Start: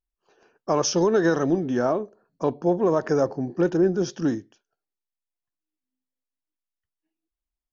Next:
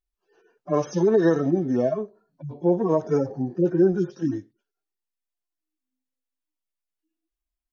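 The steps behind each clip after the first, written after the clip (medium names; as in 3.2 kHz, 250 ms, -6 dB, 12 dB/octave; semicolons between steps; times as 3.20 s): harmonic-percussive separation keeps harmonic; trim +2 dB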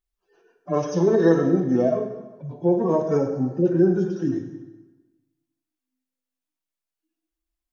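plate-style reverb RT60 1.2 s, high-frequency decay 0.8×, DRR 4 dB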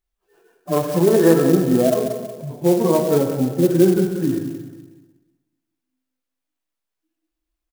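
on a send: feedback delay 182 ms, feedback 37%, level -9.5 dB; on the sum: sampling jitter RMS 0.045 ms; trim +3.5 dB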